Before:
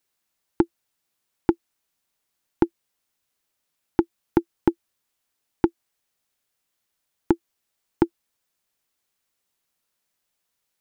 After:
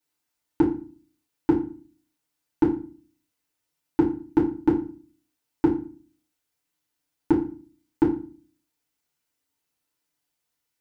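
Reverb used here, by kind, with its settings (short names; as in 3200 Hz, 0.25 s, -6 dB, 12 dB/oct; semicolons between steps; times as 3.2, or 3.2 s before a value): FDN reverb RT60 0.39 s, low-frequency decay 1.5×, high-frequency decay 0.85×, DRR -5 dB; gain -8.5 dB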